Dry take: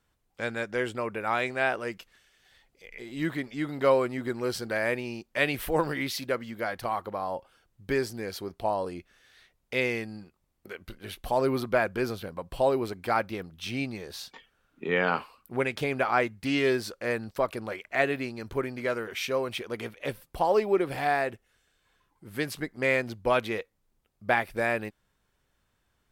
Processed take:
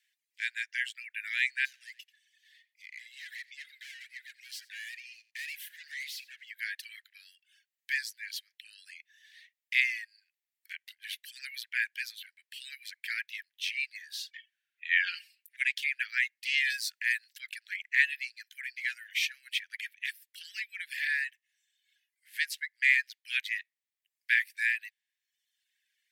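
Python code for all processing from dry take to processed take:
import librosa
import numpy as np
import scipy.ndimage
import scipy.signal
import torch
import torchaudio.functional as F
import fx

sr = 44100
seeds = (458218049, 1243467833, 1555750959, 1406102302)

y = fx.chain(x, sr, fx.highpass(hz=620.0, slope=6),
    fx.tube_stage(drive_db=40.0, bias=0.55),
    fx.echo_single(ms=88, db=-10.0), at=(1.65, 6.5))
y = fx.chain(y, sr, fx.dynamic_eq(hz=5000.0, q=2.2, threshold_db=-58.0, ratio=4.0, max_db=6),
    fx.comb(ms=5.0, depth=0.82), at=(15.05, 15.56))
y = fx.chain(y, sr, fx.high_shelf(hz=3900.0, db=6.0),
    fx.band_squash(depth_pct=40), at=(16.7, 17.33))
y = scipy.signal.sosfilt(scipy.signal.butter(16, 1700.0, 'highpass', fs=sr, output='sos'), y)
y = fx.dereverb_blind(y, sr, rt60_s=0.99)
y = fx.high_shelf(y, sr, hz=3200.0, db=-8.5)
y = F.gain(torch.from_numpy(y), 8.0).numpy()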